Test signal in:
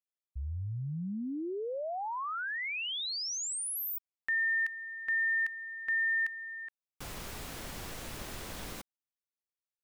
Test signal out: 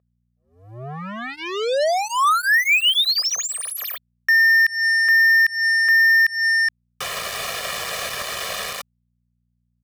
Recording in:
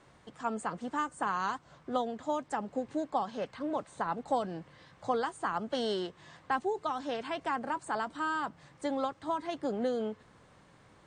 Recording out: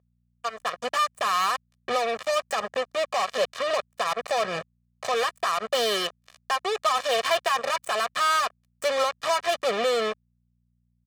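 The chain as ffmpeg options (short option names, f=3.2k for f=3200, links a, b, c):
-filter_complex "[0:a]asplit=2[a][b];[b]asoftclip=type=hard:threshold=-32.5dB,volume=-9dB[c];[a][c]amix=inputs=2:normalize=0,dynaudnorm=f=100:g=17:m=16dB,aresample=32000,aresample=44100,alimiter=limit=-14.5dB:level=0:latency=1:release=202,acrusher=bits=3:mix=0:aa=0.5,highshelf=f=5.8k:g=-4,aeval=exprs='val(0)+0.00282*(sin(2*PI*60*n/s)+sin(2*PI*2*60*n/s)/2+sin(2*PI*3*60*n/s)/3+sin(2*PI*4*60*n/s)/4+sin(2*PI*5*60*n/s)/5)':c=same,acrossover=split=4600[d][e];[e]acompressor=threshold=-32dB:ratio=4:attack=1:release=60[f];[d][f]amix=inputs=2:normalize=0,highpass=f=1k:p=1,aecho=1:1:1.7:0.92"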